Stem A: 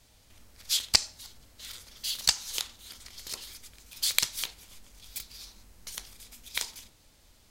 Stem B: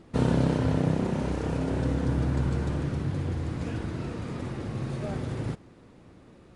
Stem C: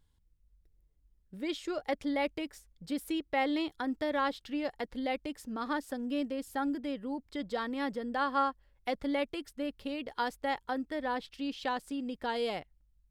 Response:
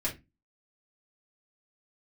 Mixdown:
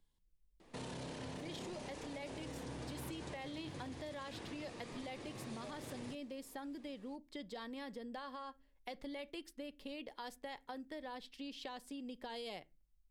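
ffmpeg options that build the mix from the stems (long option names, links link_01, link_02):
-filter_complex "[1:a]highpass=frequency=700:poles=1,adelay=600,volume=-4dB[link_01];[2:a]equalizer=frequency=76:width_type=o:width=1.2:gain=-11.5,volume=-5dB,asplit=2[link_02][link_03];[link_03]volume=-21.5dB[link_04];[link_01][link_02]amix=inputs=2:normalize=0,equalizer=frequency=1400:width_type=o:width=0.35:gain=-7.5,alimiter=level_in=9.5dB:limit=-24dB:level=0:latency=1:release=14,volume=-9.5dB,volume=0dB[link_05];[3:a]atrim=start_sample=2205[link_06];[link_04][link_06]afir=irnorm=-1:irlink=0[link_07];[link_05][link_07]amix=inputs=2:normalize=0,acrossover=split=120|3000[link_08][link_09][link_10];[link_09]acompressor=threshold=-44dB:ratio=6[link_11];[link_08][link_11][link_10]amix=inputs=3:normalize=0"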